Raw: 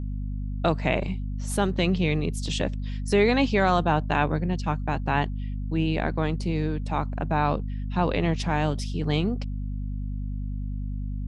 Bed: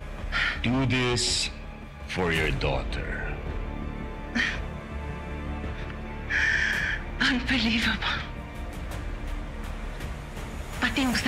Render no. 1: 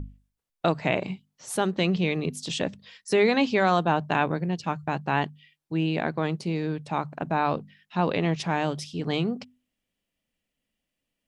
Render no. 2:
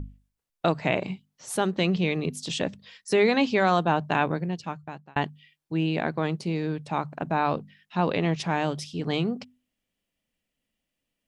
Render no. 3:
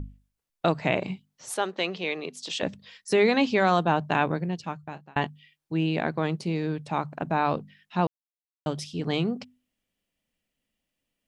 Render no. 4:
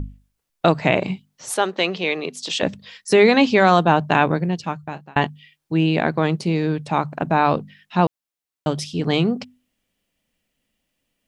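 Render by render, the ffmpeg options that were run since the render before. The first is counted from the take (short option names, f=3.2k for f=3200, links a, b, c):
-af "bandreject=f=50:t=h:w=6,bandreject=f=100:t=h:w=6,bandreject=f=150:t=h:w=6,bandreject=f=200:t=h:w=6,bandreject=f=250:t=h:w=6"
-filter_complex "[0:a]asplit=2[a][b];[a]atrim=end=5.16,asetpts=PTS-STARTPTS,afade=t=out:st=4.33:d=0.83[c];[b]atrim=start=5.16,asetpts=PTS-STARTPTS,afade=t=in:d=0.004:c=hsin[d];[c][d]concat=n=2:v=0:a=1"
-filter_complex "[0:a]asettb=1/sr,asplit=3[a][b][c];[a]atrim=end=1.544[d];[b]atrim=start=1.54:end=2.63,asetpts=PTS-STARTPTS,afade=t=in:d=0.004:c=qsin,afade=t=out:st=1.086:d=0.004:c=qsin,highpass=440,lowpass=7k[e];[c]atrim=start=2.626[f];[d][e]acrossfade=d=0.004:c1=hsin:c2=qsin[g];[g][f]acrossfade=d=0.004:c1=qsin:c2=hsin,asettb=1/sr,asplit=3[h][i][j];[h]atrim=end=4.844[k];[i]atrim=start=4.84:end=5.27,asetpts=PTS-STARTPTS,afade=t=in:d=0.004:c=qsin,afade=t=out:st=0.426:d=0.004:c=qsin,asplit=2[l][m];[m]adelay=33,volume=-13dB[n];[l][n]amix=inputs=2:normalize=0,atrim=end_sample=18963[o];[j]atrim=start=5.266[p];[k][o]acrossfade=d=0.004:c1=hsin:c2=qsin[q];[q][p]acrossfade=d=0.004:c1=qsin:c2=hsin,asplit=3[r][s][t];[r]atrim=end=8.07,asetpts=PTS-STARTPTS,afade=t=out:st=8.066:d=0.004:c=hsin[u];[s]atrim=start=8.07:end=8.66,asetpts=PTS-STARTPTS,volume=0[v];[t]atrim=start=8.66,asetpts=PTS-STARTPTS,afade=t=in:d=0.004:c=hsin[w];[u][v][w]concat=n=3:v=0:a=1"
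-af "volume=7.5dB,alimiter=limit=-2dB:level=0:latency=1"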